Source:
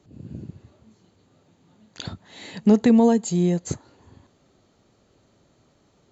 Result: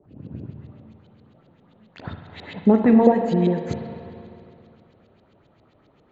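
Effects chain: LFO low-pass saw up 7.5 Hz 440–4100 Hz; spring tank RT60 2.6 s, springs 36/50 ms, chirp 30 ms, DRR 5 dB

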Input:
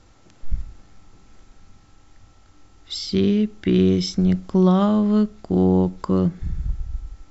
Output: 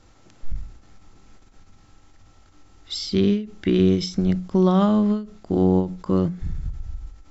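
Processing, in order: notches 60/120/180 Hz; ending taper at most 140 dB/s

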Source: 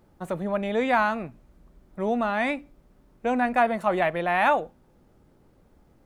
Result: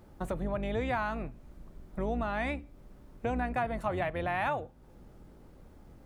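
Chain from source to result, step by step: octaver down 2 oct, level +1 dB; compressor 2.5:1, threshold -38 dBFS, peak gain reduction 14.5 dB; gain +3 dB

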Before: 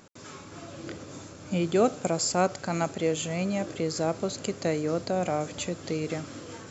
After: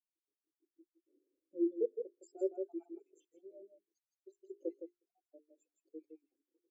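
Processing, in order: random spectral dropouts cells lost 61%; bell 1100 Hz -11 dB 1.7 oct; notch 1900 Hz; on a send: echo 0.163 s -3.5 dB; on the sum: rotary speaker horn 0.6 Hz; resonant low shelf 250 Hz -12 dB, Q 3; notches 50/100/150/200/250/300/350/400/450 Hz; in parallel at -4 dB: soft clip -31 dBFS, distortion -8 dB; on the sum: spectral expander 2.5:1; gain -7.5 dB

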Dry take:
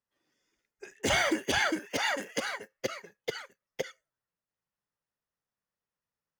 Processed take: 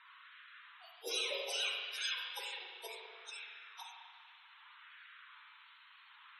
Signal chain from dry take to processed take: pitch shift by moving bins +10 st; HPF 270 Hz; band shelf 940 Hz -12.5 dB; band noise 970–4000 Hz -58 dBFS; LFO high-pass sine 0.65 Hz 440–1600 Hz; loudest bins only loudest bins 64; spring tank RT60 1.7 s, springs 38/47 ms, chirp 35 ms, DRR -0.5 dB; attack slew limiter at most 310 dB/s; gain -4.5 dB

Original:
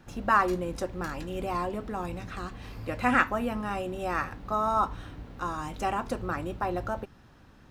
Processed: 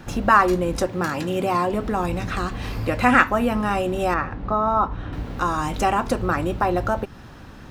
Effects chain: 0.88–1.7 HPF 100 Hz 24 dB/oct; in parallel at +3 dB: compressor, threshold -37 dBFS, peak gain reduction 18.5 dB; 4.14–5.13 on the sum: tape spacing loss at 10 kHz 26 dB; gain +6 dB

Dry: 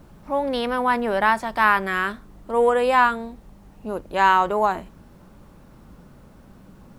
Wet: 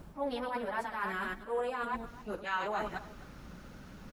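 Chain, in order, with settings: reverse delay 0.174 s, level -9 dB; reverse; compressor 10:1, threshold -29 dBFS, peak gain reduction 17.5 dB; reverse; plain phase-vocoder stretch 0.59×; spectral gain 2.07–4.81, 1200–7000 Hz +7 dB; on a send: echo 0.262 s -17.5 dB

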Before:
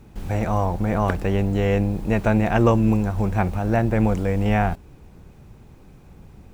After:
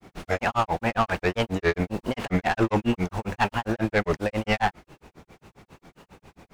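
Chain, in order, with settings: dynamic EQ 2200 Hz, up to +5 dB, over -36 dBFS, Q 0.73; overdrive pedal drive 20 dB, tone 5800 Hz, clips at -5.5 dBFS; grains 0.119 s, grains 7.4/s, spray 18 ms, pitch spread up and down by 3 st; gain -4 dB

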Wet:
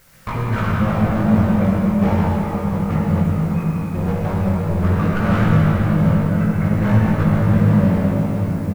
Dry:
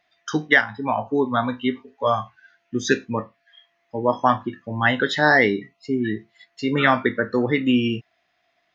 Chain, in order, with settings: CVSD 16 kbps; recorder AGC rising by 6 dB/s; resonant low shelf 310 Hz +13.5 dB, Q 1.5; de-hum 87.66 Hz, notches 3; limiter -7.5 dBFS, peak gain reduction 9 dB; compressor 2:1, threshold -28 dBFS, peak gain reduction 9.5 dB; hard clip -28.5 dBFS, distortion -6 dB; pitch shift -4.5 st; added noise white -63 dBFS; doubler 19 ms -4 dB; reverb RT60 5.8 s, pre-delay 41 ms, DRR -4.5 dB; gain +7 dB

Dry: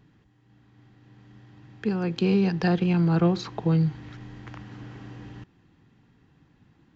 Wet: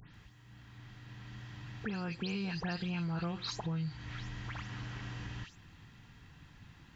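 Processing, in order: spectral delay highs late, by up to 0.142 s; bell 330 Hz -15 dB 2.5 oct; in parallel at +2 dB: limiter -30.5 dBFS, peak gain reduction 10 dB; on the sum: compressor 2.5:1, threshold -45 dBFS, peak gain reduction 14 dB; gain +4 dB

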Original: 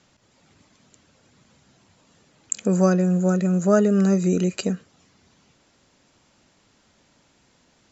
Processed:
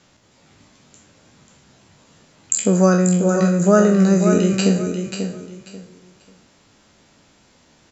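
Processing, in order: spectral trails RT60 0.50 s; feedback echo 0.539 s, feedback 24%, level -7 dB; gain +3.5 dB

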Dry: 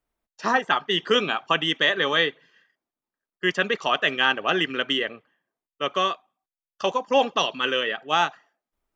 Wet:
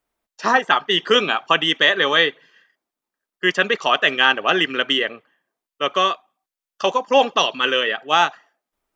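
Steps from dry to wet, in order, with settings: low shelf 170 Hz -9 dB; gain +5.5 dB

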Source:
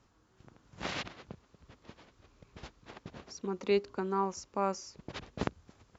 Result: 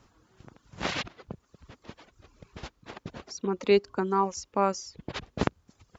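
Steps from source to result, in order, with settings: reverb removal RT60 0.71 s; gain +7 dB

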